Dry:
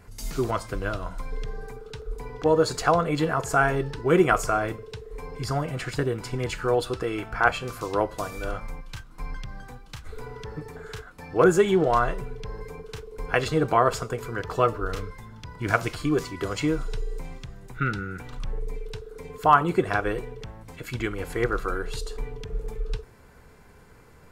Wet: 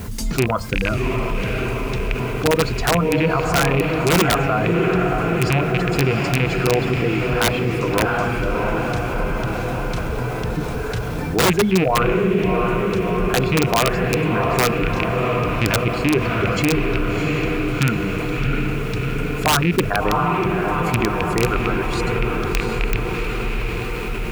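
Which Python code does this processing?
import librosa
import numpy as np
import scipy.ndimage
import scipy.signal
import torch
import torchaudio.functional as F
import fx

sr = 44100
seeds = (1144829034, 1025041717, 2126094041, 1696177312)

p1 = fx.rattle_buzz(x, sr, strikes_db=-26.0, level_db=-11.0)
p2 = fx.hum_notches(p1, sr, base_hz=50, count=4)
p3 = fx.dereverb_blind(p2, sr, rt60_s=1.1)
p4 = fx.env_lowpass_down(p3, sr, base_hz=2600.0, full_db=-21.0)
p5 = fx.quant_dither(p4, sr, seeds[0], bits=8, dither='triangular')
p6 = p4 + (p5 * 10.0 ** (-7.0 / 20.0))
p7 = fx.peak_eq(p6, sr, hz=210.0, db=6.5, octaves=0.39)
p8 = fx.echo_diffused(p7, sr, ms=703, feedback_pct=62, wet_db=-5.0)
p9 = (np.mod(10.0 ** (7.5 / 20.0) * p8 + 1.0, 2.0) - 1.0) / 10.0 ** (7.5 / 20.0)
p10 = fx.highpass(p9, sr, hz=69.0, slope=6)
p11 = fx.low_shelf(p10, sr, hz=280.0, db=11.0)
p12 = fx.env_flatten(p11, sr, amount_pct=50)
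y = p12 * 10.0 ** (-4.5 / 20.0)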